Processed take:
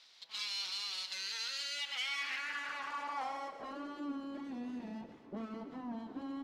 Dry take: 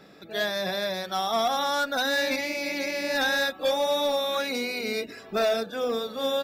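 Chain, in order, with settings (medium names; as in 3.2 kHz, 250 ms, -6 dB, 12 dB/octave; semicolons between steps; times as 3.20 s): full-wave rectifier; on a send: thinning echo 125 ms, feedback 65%, level -14.5 dB; on the sum: peak limiter -24 dBFS, peak gain reduction 6 dB; band-pass sweep 4.2 kHz -> 290 Hz, 1.65–4.20 s; trim +4 dB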